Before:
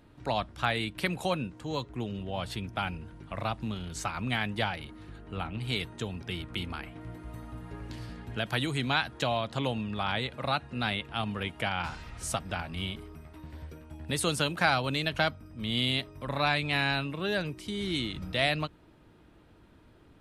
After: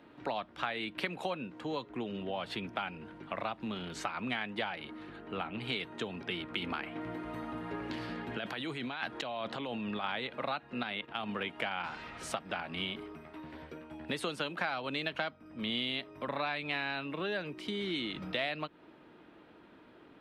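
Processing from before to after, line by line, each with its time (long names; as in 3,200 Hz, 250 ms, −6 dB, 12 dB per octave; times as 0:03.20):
0:06.59–0:10.04: compressor whose output falls as the input rises −36 dBFS
0:10.83–0:11.29: output level in coarse steps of 12 dB
whole clip: three-way crossover with the lows and the highs turned down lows −21 dB, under 190 Hz, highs −24 dB, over 3,600 Hz; downward compressor 4 to 1, threshold −38 dBFS; high-shelf EQ 5,600 Hz +10.5 dB; level +4 dB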